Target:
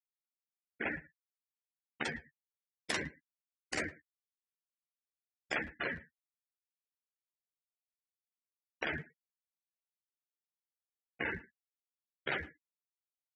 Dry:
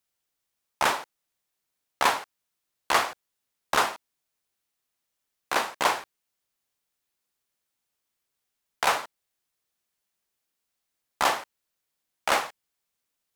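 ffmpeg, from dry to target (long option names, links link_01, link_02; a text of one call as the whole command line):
ffmpeg -i in.wav -filter_complex "[0:a]acompressor=threshold=-23dB:ratio=10,asettb=1/sr,asplit=3[link_01][link_02][link_03];[link_01]atrim=end=2.044[link_04];[link_02]atrim=start=2.04:end=5.55,asetpts=PTS-STARTPTS,afade=type=in:duration=0.004:curve=qsin,afade=type=out:start_time=3.506:duration=0.004:curve=qsin,bass=frequency=250:gain=-7,treble=frequency=4000:gain=11[link_05];[link_03]atrim=start=5.546[link_06];[link_04][link_05]acrossfade=duration=0.004:curve1=hsin:curve2=qsin[link_07];[link_07][link_06]acrossfade=duration=0.004:curve1=qsin:curve2=hsin,afftfilt=real='re*gte(hypot(re,im),0.0794)':imag='im*gte(hypot(re,im),0.0794)':win_size=1024:overlap=0.75,aeval=exprs='val(0)*sin(2*PI*870*n/s)':channel_layout=same,lowshelf=frequency=320:gain=10.5,alimiter=limit=-21.5dB:level=0:latency=1:release=272,asplit=2[link_08][link_09];[link_09]adelay=110,highpass=300,lowpass=3400,asoftclip=type=hard:threshold=-31dB,volume=-20dB[link_10];[link_08][link_10]amix=inputs=2:normalize=0,afftfilt=real='re*lt(hypot(re,im),0.0562)':imag='im*lt(hypot(re,im),0.0562)':win_size=1024:overlap=0.75,highpass=62,asplit=2[link_11][link_12];[link_12]adelay=13,volume=-8.5dB[link_13];[link_11][link_13]amix=inputs=2:normalize=0,volume=5dB" out.wav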